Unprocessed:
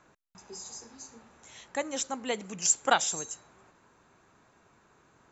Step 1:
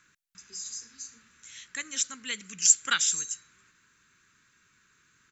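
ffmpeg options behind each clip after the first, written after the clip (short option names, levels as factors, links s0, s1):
-af "firequalizer=gain_entry='entry(180,0);entry(490,-11);entry(710,-23);entry(1100,-2);entry(1500,9);entry(5800,12)':delay=0.05:min_phase=1,volume=0.473"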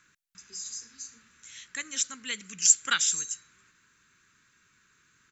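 -af anull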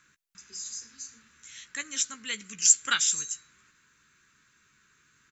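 -filter_complex "[0:a]asplit=2[s0][s1];[s1]adelay=14,volume=0.316[s2];[s0][s2]amix=inputs=2:normalize=0"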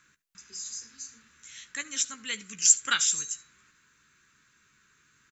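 -af "aecho=1:1:74:0.0891"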